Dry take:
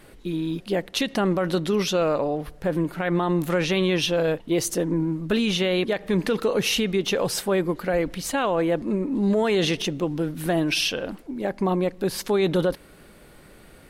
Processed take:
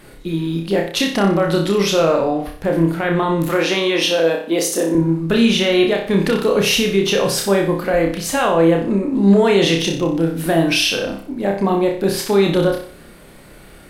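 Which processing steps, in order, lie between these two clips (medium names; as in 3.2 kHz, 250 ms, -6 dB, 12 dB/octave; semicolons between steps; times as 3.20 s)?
3.48–4.95 s: high-pass 230 Hz 24 dB/octave; flutter echo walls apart 5.2 m, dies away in 0.47 s; trim +5 dB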